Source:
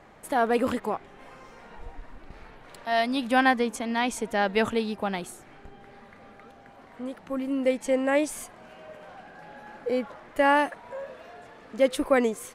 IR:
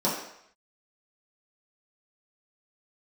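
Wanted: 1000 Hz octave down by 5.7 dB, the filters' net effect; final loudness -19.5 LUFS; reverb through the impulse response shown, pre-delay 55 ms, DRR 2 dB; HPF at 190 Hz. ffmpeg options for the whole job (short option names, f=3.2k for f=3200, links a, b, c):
-filter_complex "[0:a]highpass=190,equalizer=f=1k:t=o:g=-8,asplit=2[a][b];[1:a]atrim=start_sample=2205,adelay=55[c];[b][c]afir=irnorm=-1:irlink=0,volume=-14.5dB[d];[a][d]amix=inputs=2:normalize=0,volume=5.5dB"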